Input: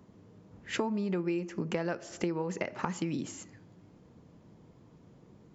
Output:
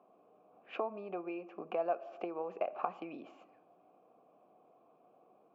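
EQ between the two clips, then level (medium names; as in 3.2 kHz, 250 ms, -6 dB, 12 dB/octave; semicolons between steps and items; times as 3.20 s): vowel filter a; band-pass 320–3700 Hz; tilt EQ -2.5 dB/octave; +8.5 dB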